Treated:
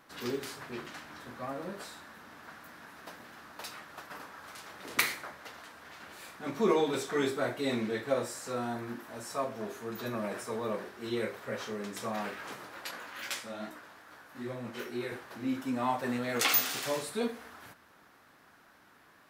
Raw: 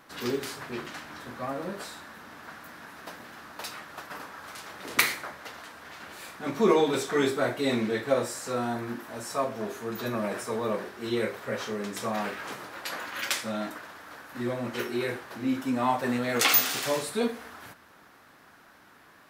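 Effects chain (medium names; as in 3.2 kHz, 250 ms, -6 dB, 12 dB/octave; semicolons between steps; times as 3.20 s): 12.91–15.12 s: chorus 2.4 Hz, delay 16 ms, depth 5.7 ms; trim -5 dB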